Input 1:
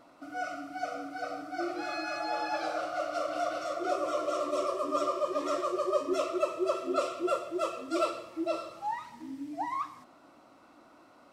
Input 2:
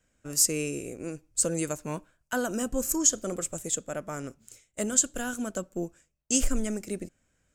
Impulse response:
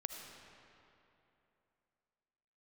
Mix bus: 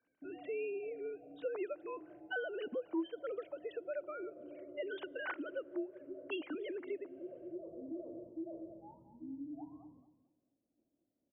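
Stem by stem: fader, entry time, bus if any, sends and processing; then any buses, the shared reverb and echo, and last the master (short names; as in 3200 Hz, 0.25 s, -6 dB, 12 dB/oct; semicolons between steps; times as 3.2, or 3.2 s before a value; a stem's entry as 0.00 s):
-0.5 dB, 0.00 s, no send, echo send -11.5 dB, expander -45 dBFS; limiter -23.5 dBFS, peak gain reduction 8 dB; Gaussian blur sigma 19 samples; auto duck -10 dB, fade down 1.75 s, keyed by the second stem
-9.5 dB, 0.00 s, send -23.5 dB, no echo send, sine-wave speech; AGC gain up to 5 dB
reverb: on, RT60 3.0 s, pre-delay 35 ms
echo: feedback echo 0.223 s, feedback 22%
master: compressor 2:1, threshold -43 dBFS, peak gain reduction 12.5 dB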